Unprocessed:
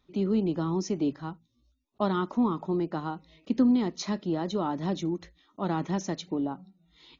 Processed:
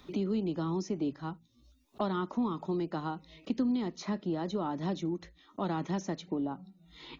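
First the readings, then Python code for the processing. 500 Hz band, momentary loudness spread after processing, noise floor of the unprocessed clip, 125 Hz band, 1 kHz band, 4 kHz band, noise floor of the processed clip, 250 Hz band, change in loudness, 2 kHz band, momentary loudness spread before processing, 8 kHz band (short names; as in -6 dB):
-4.5 dB, 11 LU, -71 dBFS, -4.0 dB, -4.0 dB, -4.5 dB, -64 dBFS, -5.0 dB, -5.0 dB, -3.5 dB, 10 LU, n/a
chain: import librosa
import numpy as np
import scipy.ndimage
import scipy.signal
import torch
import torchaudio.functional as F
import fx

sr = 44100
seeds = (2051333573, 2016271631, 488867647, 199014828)

y = fx.band_squash(x, sr, depth_pct=70)
y = y * 10.0 ** (-4.5 / 20.0)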